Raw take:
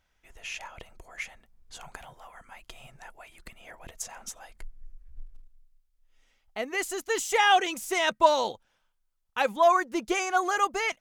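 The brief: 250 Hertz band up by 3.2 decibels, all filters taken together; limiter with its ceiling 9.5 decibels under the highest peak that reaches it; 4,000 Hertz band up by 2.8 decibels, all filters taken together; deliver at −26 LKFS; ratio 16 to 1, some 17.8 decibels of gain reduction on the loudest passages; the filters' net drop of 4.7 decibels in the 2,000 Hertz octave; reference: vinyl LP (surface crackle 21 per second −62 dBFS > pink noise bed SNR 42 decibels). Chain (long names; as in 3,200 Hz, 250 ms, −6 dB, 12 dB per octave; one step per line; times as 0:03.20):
parametric band 250 Hz +5.5 dB
parametric band 2,000 Hz −8 dB
parametric band 4,000 Hz +7.5 dB
downward compressor 16 to 1, threshold −33 dBFS
brickwall limiter −29.5 dBFS
surface crackle 21 per second −62 dBFS
pink noise bed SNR 42 dB
level +15.5 dB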